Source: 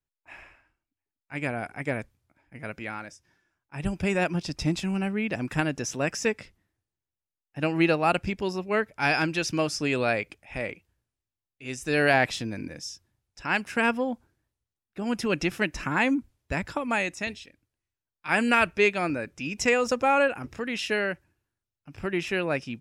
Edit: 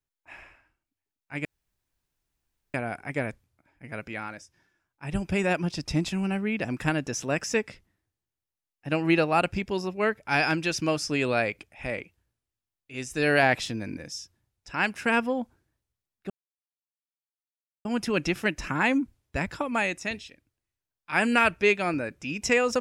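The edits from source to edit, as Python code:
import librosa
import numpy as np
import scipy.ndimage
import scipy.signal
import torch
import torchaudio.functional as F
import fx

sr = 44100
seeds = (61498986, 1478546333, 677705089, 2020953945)

y = fx.edit(x, sr, fx.insert_room_tone(at_s=1.45, length_s=1.29),
    fx.insert_silence(at_s=15.01, length_s=1.55), tone=tone)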